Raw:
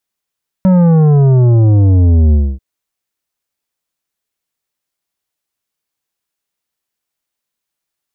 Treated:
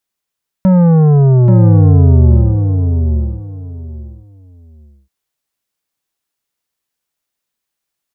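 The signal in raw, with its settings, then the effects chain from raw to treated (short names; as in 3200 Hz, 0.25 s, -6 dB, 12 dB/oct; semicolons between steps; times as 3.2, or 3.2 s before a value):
sub drop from 190 Hz, over 1.94 s, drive 10 dB, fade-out 0.26 s, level -6.5 dB
feedback echo 0.832 s, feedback 21%, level -5 dB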